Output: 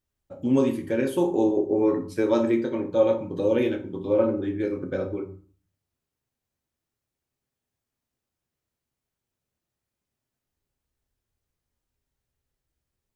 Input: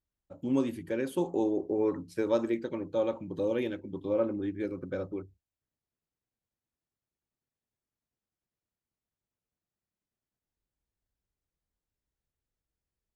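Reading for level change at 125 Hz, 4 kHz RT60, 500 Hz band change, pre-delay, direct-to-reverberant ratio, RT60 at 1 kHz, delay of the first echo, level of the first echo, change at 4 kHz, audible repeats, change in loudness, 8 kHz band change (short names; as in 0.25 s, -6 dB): +7.5 dB, 0.30 s, +7.5 dB, 7 ms, 3.5 dB, 0.45 s, none, none, +6.0 dB, none, +7.5 dB, n/a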